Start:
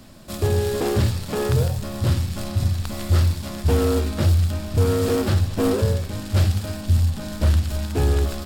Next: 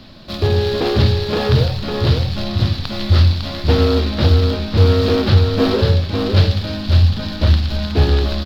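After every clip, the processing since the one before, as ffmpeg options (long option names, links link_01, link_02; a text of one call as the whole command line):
ffmpeg -i in.wav -af "highshelf=frequency=5900:width_type=q:width=3:gain=-13,aecho=1:1:553:0.562,volume=4.5dB" out.wav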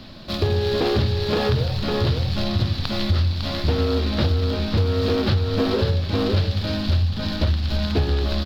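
ffmpeg -i in.wav -af "acompressor=threshold=-17dB:ratio=6" out.wav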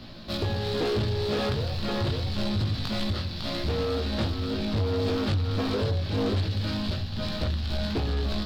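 ffmpeg -i in.wav -af "flanger=delay=17.5:depth=2.6:speed=0.27,asoftclip=type=tanh:threshold=-21dB" out.wav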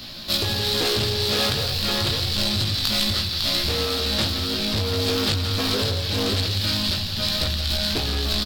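ffmpeg -i in.wav -af "crystalizer=i=7.5:c=0,aecho=1:1:172:0.335" out.wav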